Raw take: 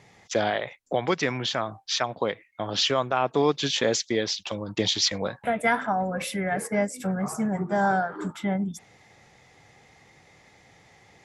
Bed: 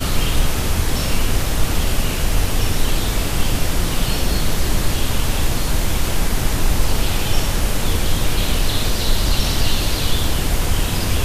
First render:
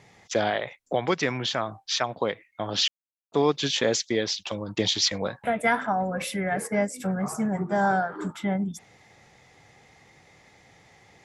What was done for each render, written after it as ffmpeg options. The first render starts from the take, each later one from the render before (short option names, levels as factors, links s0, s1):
-filter_complex "[0:a]asplit=3[s0][s1][s2];[s0]atrim=end=2.88,asetpts=PTS-STARTPTS,afade=t=out:st=2.876:d=0.004:c=hsin[s3];[s1]atrim=start=2.88:end=3.32,asetpts=PTS-STARTPTS,volume=0[s4];[s2]atrim=start=3.32,asetpts=PTS-STARTPTS,afade=t=in:d=0.004:c=hsin[s5];[s3][s4][s5]concat=n=3:v=0:a=1"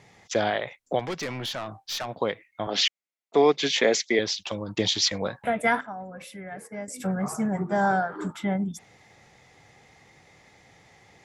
-filter_complex "[0:a]asettb=1/sr,asplit=3[s0][s1][s2];[s0]atrim=end=0.994[s3];[s1]atrim=start=0.99:end=2.08,asetpts=PTS-STARTPTS,afade=t=in:d=0.004:c=qsin,afade=t=out:st=1.086:d=0.004:c=qsin,aeval=exprs='(tanh(22.4*val(0)+0.1)-tanh(0.1))/22.4':c=same[s4];[s2]atrim=start=2.076[s5];[s3][s4]acrossfade=d=0.004:c1=hsin:c2=qsin[s6];[s6][s5]acrossfade=d=0.004:c1=qsin:c2=hsin,asettb=1/sr,asplit=3[s7][s8][s9];[s7]atrim=end=2.674[s10];[s8]atrim=start=2.67:end=4.19,asetpts=PTS-STARTPTS,afade=t=in:d=0.004:c=qsin,afade=t=out:st=1.516:d=0.004:c=qsin,highpass=f=170:w=0.5412,highpass=f=170:w=1.3066,equalizer=f=420:t=q:w=4:g=4,equalizer=f=700:t=q:w=4:g=6,equalizer=f=2100:t=q:w=4:g=10,lowpass=f=8400:w=0.5412,lowpass=f=8400:w=1.3066[s11];[s9]atrim=start=4.186[s12];[s10][s11]acrossfade=d=0.004:c1=hsin:c2=qsin[s13];[s13][s12]acrossfade=d=0.004:c1=qsin:c2=hsin,asplit=3[s14][s15][s16];[s14]atrim=end=5.812[s17];[s15]atrim=start=5.808:end=6.882,asetpts=PTS-STARTPTS,volume=0.266[s18];[s16]atrim=start=6.878[s19];[s17][s18]acrossfade=d=0.004:c1=hsin:c2=hsin[s20];[s20][s19]acrossfade=d=0.004:c1=hsin:c2=hsin"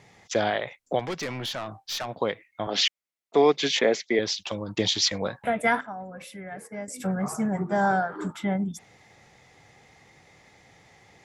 -filter_complex "[0:a]asettb=1/sr,asplit=3[s0][s1][s2];[s0]atrim=end=3.794[s3];[s1]atrim=start=3.79:end=4.23,asetpts=PTS-STARTPTS,afade=t=in:d=0.004:c=qsin,afade=t=out:st=0.436:d=0.004:c=qsin,aemphasis=mode=reproduction:type=75kf[s4];[s2]atrim=start=4.226[s5];[s3][s4]acrossfade=d=0.004:c1=hsin:c2=qsin[s6];[s6][s5]acrossfade=d=0.004:c1=qsin:c2=hsin"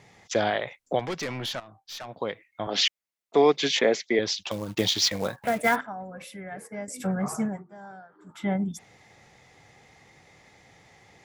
-filter_complex "[0:a]asettb=1/sr,asplit=3[s0][s1][s2];[s0]atrim=end=4.514[s3];[s1]atrim=start=4.51:end=5.76,asetpts=PTS-STARTPTS,afade=t=in:d=0.004:c=qsin,afade=t=out:st=1.246:d=0.004:c=qsin,acrusher=bits=4:mode=log:mix=0:aa=0.000001[s4];[s2]atrim=start=5.756[s5];[s3][s4]acrossfade=d=0.004:c1=hsin:c2=qsin[s6];[s6][s5]acrossfade=d=0.004:c1=qsin:c2=hsin,asplit=4[s7][s8][s9][s10];[s7]atrim=end=1.6,asetpts=PTS-STARTPTS,afade=t=out:st=1.596:d=0.004:c=hsin:silence=0.188365[s11];[s8]atrim=start=1.6:end=7.63,asetpts=PTS-STARTPTS,afade=t=in:d=1.23:silence=0.188365,afade=t=out:st=5.81:d=0.22:silence=0.0841395[s12];[s9]atrim=start=7.63:end=8.26,asetpts=PTS-STARTPTS,volume=0.0841[s13];[s10]atrim=start=8.26,asetpts=PTS-STARTPTS,afade=t=in:d=0.22:silence=0.0841395[s14];[s11][s12][s13][s14]concat=n=4:v=0:a=1"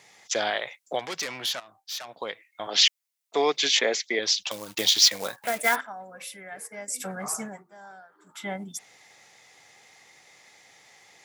-af "highpass=f=670:p=1,highshelf=f=3600:g=9"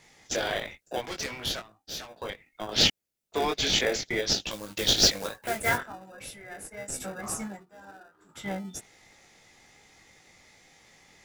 -filter_complex "[0:a]flanger=delay=18.5:depth=2.7:speed=1.1,asplit=2[s0][s1];[s1]acrusher=samples=41:mix=1:aa=0.000001,volume=0.398[s2];[s0][s2]amix=inputs=2:normalize=0"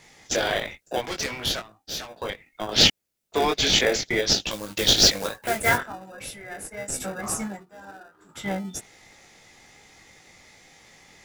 -af "volume=1.78,alimiter=limit=0.708:level=0:latency=1"